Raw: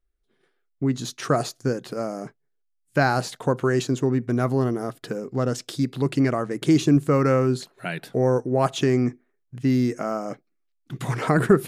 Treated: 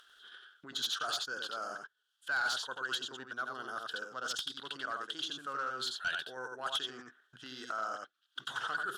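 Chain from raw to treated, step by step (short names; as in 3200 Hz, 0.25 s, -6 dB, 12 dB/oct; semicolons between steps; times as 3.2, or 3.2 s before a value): reverse; compressor 8:1, threshold -29 dBFS, peak gain reduction 18.5 dB; reverse; double band-pass 2200 Hz, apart 1.1 oct; upward compressor, threshold -56 dBFS; tilt +2 dB/oct; on a send: echo 0.109 s -4 dB; on the sum: dynamic EQ 2000 Hz, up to -6 dB, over -58 dBFS, Q 1.6; sine folder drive 8 dB, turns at -27 dBFS; tempo 1.3×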